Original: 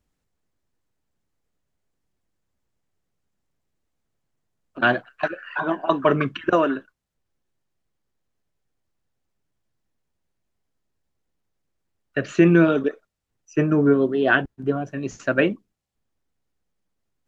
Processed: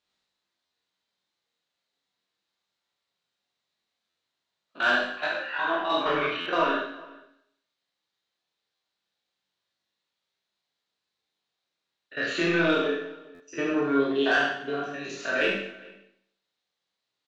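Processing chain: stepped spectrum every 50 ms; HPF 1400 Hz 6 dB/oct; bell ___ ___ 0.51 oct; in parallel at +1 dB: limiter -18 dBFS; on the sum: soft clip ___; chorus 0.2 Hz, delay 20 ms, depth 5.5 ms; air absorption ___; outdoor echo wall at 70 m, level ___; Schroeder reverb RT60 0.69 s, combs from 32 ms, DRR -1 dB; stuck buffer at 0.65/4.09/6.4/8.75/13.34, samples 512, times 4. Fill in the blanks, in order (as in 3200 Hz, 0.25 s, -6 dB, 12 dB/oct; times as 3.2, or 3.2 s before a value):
3900 Hz, +11.5 dB, -13.5 dBFS, 90 m, -22 dB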